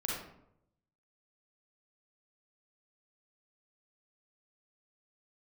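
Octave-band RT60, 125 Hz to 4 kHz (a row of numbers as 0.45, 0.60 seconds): 1.1, 0.85, 0.80, 0.70, 0.55, 0.45 seconds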